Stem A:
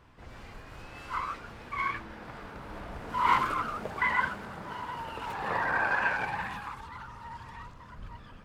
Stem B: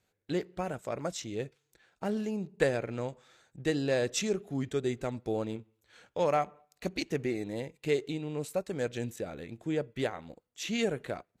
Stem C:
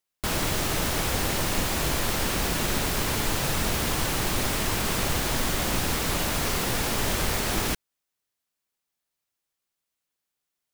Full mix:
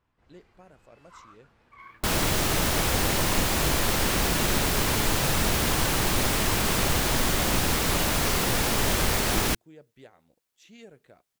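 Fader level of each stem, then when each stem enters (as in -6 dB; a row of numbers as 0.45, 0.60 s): -17.0, -18.5, +2.0 dB; 0.00, 0.00, 1.80 s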